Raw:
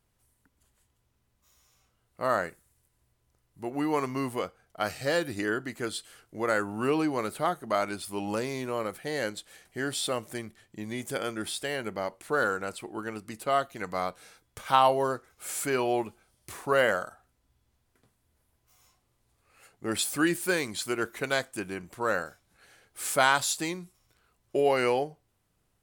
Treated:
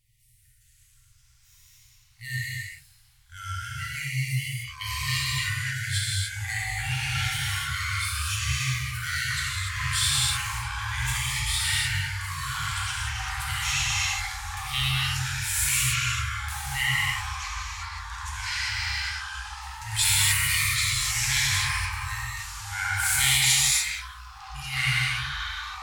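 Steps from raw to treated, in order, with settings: FFT band-reject 140–1800 Hz; gated-style reverb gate 320 ms flat, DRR -6.5 dB; ever faster or slower copies 368 ms, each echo -5 st, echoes 3; trim +3.5 dB

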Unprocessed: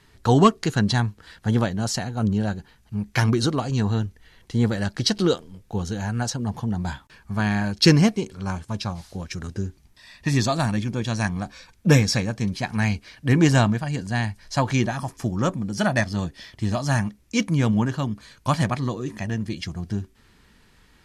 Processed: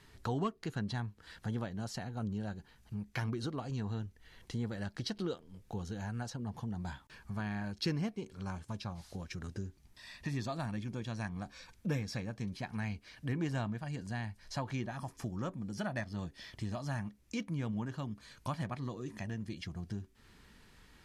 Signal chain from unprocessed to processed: dynamic bell 7.1 kHz, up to -7 dB, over -44 dBFS, Q 0.77; compression 2:1, threshold -40 dBFS, peak gain reduction 16 dB; trim -4 dB

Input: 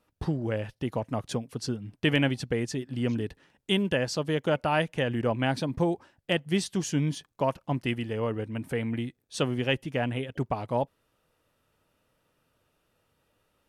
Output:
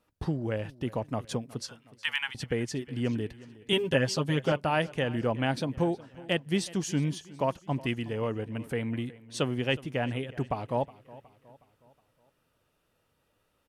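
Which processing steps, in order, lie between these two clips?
1.61–2.35 s: steep high-pass 840 Hz 72 dB/octave; 3.72–4.52 s: comb 7.4 ms, depth 91%; on a send: feedback delay 366 ms, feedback 47%, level -20 dB; on the sum: trim -1.5 dB

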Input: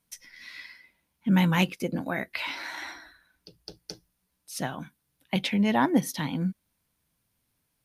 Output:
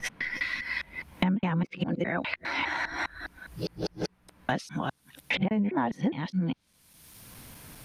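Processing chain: time reversed locally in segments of 204 ms; low-pass that closes with the level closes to 1.4 kHz, closed at -23 dBFS; three bands compressed up and down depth 100%

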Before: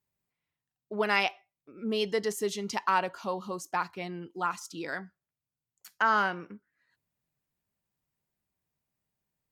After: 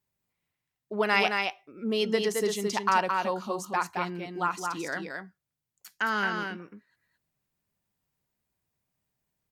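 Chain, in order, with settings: 5.92–6.38 s: high-order bell 810 Hz -8.5 dB; delay 219 ms -4.5 dB; trim +2 dB

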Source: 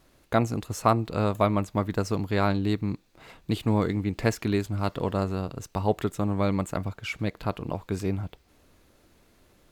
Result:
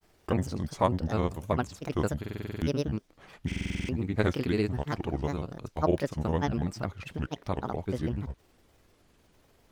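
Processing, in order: granulator, pitch spread up and down by 7 st; buffer glitch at 2.20/3.47 s, samples 2048, times 8; trim -2 dB

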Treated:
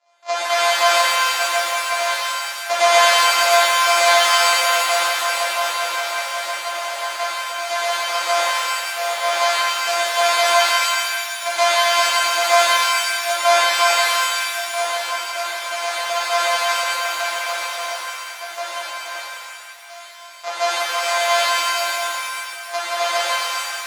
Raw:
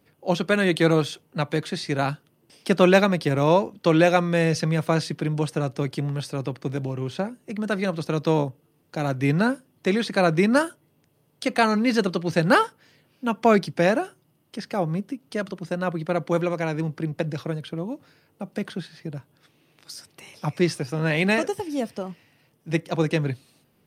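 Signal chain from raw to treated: sorted samples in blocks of 128 samples; Chebyshev band-pass 590–7200 Hz, order 4; pitch-shifted reverb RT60 2.1 s, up +7 st, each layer -2 dB, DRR -8.5 dB; trim -2.5 dB

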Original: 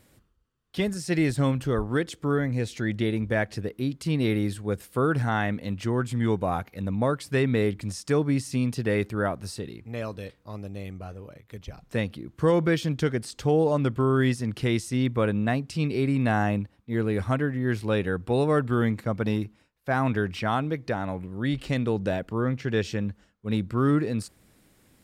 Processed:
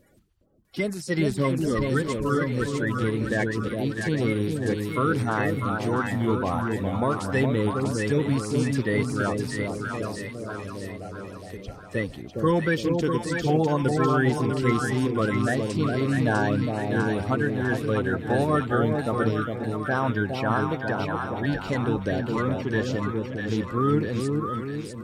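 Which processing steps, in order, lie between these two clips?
coarse spectral quantiser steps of 30 dB; two-band feedback delay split 830 Hz, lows 411 ms, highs 650 ms, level -3.5 dB

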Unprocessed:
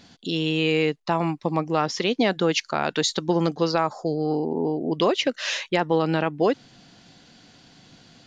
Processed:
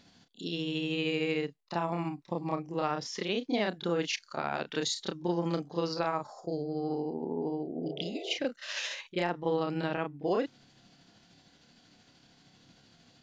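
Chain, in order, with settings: spectral replace 4.91–5.19 s, 340–2000 Hz before; granular stretch 1.6×, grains 154 ms; trim -8 dB

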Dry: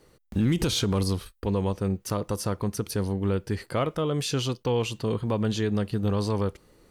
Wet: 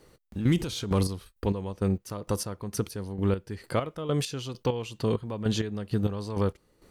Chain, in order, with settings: square tremolo 2.2 Hz, depth 65%, duty 35%; trim +1 dB

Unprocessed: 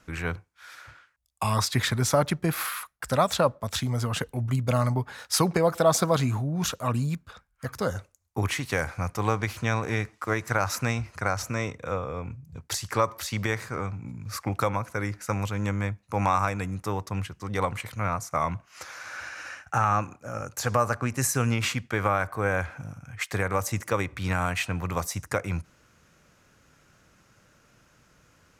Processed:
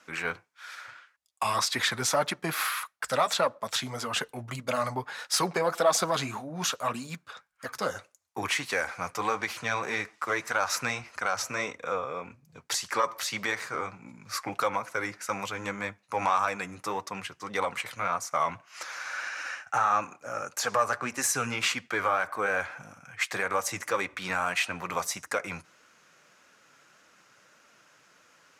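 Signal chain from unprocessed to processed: single-diode clipper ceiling -11 dBFS; frequency weighting A; in parallel at +0.5 dB: peak limiter -19.5 dBFS, peak gain reduction 7.5 dB; on the sum: flange 1.7 Hz, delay 3.1 ms, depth 4.8 ms, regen -42%

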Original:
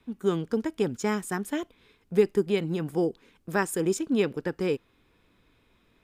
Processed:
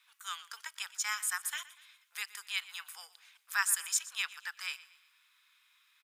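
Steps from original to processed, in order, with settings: steep high-pass 1.1 kHz 36 dB/octave; treble shelf 2.9 kHz +10 dB; feedback delay 120 ms, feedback 43%, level -18 dB; trim -2.5 dB

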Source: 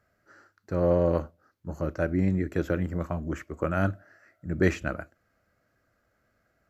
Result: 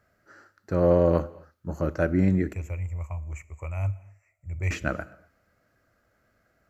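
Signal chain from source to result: 2.53–4.71 s: FFT filter 100 Hz 0 dB, 210 Hz -28 dB, 300 Hz -26 dB, 1 kHz -7 dB, 1.6 kHz -29 dB, 2.3 kHz +3 dB, 3.5 kHz -27 dB, 4.9 kHz -19 dB, 7.3 kHz +1 dB, 11 kHz -9 dB; reverberation, pre-delay 3 ms, DRR 19 dB; trim +3 dB

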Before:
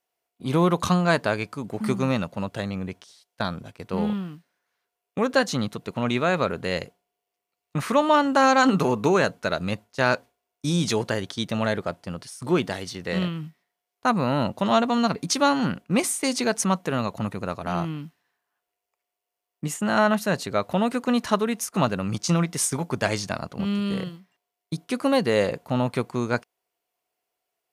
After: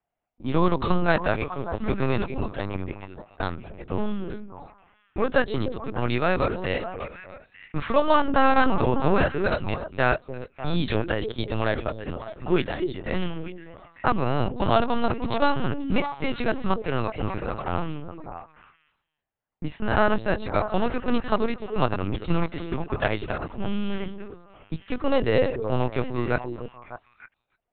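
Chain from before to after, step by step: repeats whose band climbs or falls 299 ms, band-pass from 330 Hz, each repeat 1.4 oct, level -4.5 dB; LPC vocoder at 8 kHz pitch kept; level-controlled noise filter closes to 1.8 kHz, open at -17 dBFS

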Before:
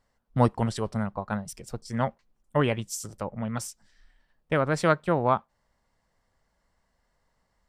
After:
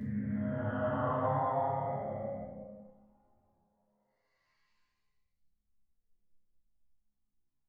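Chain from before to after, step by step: resonances exaggerated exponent 1.5; Paulstretch 19×, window 0.05 s, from 1.96 s; chord resonator C#2 major, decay 0.59 s; trim +6.5 dB

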